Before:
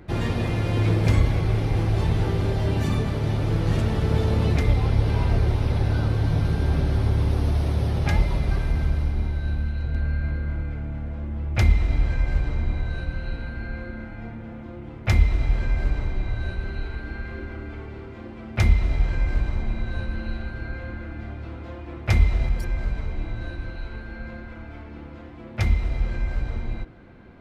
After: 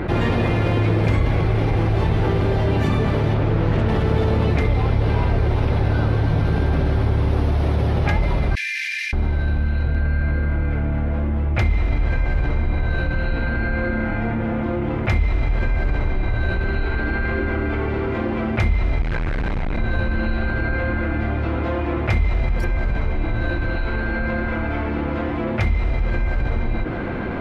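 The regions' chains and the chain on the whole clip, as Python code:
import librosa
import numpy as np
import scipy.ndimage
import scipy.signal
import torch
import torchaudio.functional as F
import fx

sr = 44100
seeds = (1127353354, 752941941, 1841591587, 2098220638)

y = fx.chain(x, sr, fx.high_shelf(hz=5000.0, db=-8.5),
    fx.doppler_dist(depth_ms=0.22), at=(3.34, 3.89))
y = fx.chain(y, sr, fx.cheby_ripple_highpass(hz=1700.0, ripple_db=9),
    fx.env_flatten(amount_pct=70), at=(8.55, 9.13))
y = fx.chain(y, sr, fx.hum_notches(base_hz=50, count=7),
    fx.overload_stage(gain_db=30.5), at=(19.02, 19.78))
y = fx.bass_treble(y, sr, bass_db=-4, treble_db=-12)
y = fx.env_flatten(y, sr, amount_pct=70)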